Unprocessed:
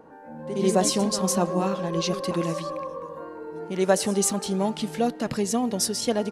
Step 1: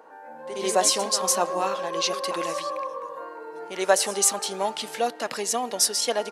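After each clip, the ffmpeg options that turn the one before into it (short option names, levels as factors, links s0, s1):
-af "highpass=630,volume=1.68"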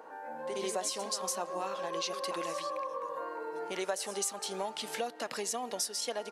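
-af "acompressor=threshold=0.02:ratio=4"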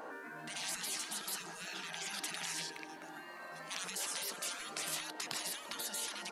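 -af "afftfilt=real='re*lt(hypot(re,im),0.0158)':imag='im*lt(hypot(re,im),0.0158)':win_size=1024:overlap=0.75,volume=2.11"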